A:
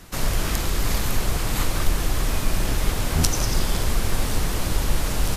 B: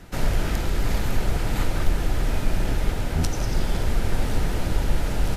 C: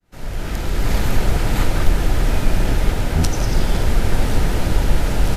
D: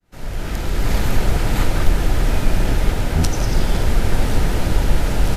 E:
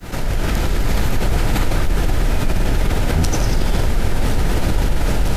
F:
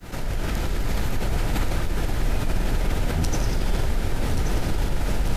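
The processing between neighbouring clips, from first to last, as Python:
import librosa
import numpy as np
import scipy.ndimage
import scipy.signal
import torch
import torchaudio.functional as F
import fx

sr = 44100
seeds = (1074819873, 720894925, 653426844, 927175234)

y1 = fx.high_shelf(x, sr, hz=3400.0, db=-11.5)
y1 = fx.notch(y1, sr, hz=1100.0, q=6.2)
y1 = fx.rider(y1, sr, range_db=10, speed_s=0.5)
y2 = fx.fade_in_head(y1, sr, length_s=1.0)
y2 = y2 * 10.0 ** (6.0 / 20.0)
y3 = y2
y4 = fx.env_flatten(y3, sr, amount_pct=70)
y4 = y4 * 10.0 ** (-6.0 / 20.0)
y5 = y4 + 10.0 ** (-8.5 / 20.0) * np.pad(y4, (int(1131 * sr / 1000.0), 0))[:len(y4)]
y5 = y5 * 10.0 ** (-7.0 / 20.0)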